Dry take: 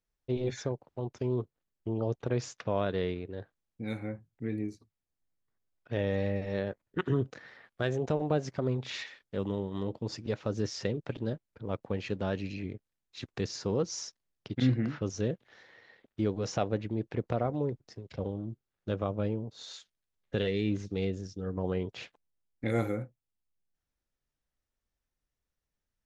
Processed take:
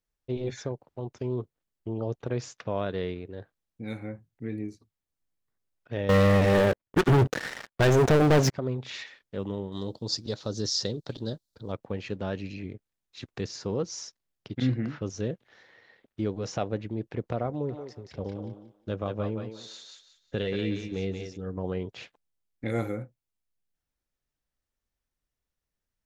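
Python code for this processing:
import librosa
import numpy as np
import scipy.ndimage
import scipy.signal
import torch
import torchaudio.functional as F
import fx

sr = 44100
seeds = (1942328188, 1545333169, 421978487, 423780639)

y = fx.leveller(x, sr, passes=5, at=(6.09, 8.53))
y = fx.high_shelf_res(y, sr, hz=3200.0, db=8.5, q=3.0, at=(9.72, 11.72))
y = fx.echo_thinned(y, sr, ms=180, feedback_pct=28, hz=580.0, wet_db=-3.0, at=(17.68, 21.36), fade=0.02)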